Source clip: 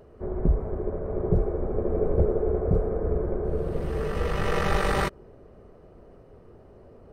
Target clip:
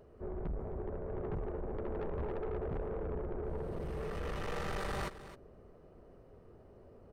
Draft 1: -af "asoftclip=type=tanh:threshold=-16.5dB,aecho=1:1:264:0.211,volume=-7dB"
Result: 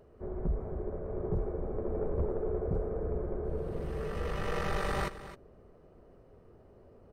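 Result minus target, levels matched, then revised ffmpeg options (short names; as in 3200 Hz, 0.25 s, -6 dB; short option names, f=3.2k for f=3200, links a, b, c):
soft clip: distortion -9 dB
-af "asoftclip=type=tanh:threshold=-27.5dB,aecho=1:1:264:0.211,volume=-7dB"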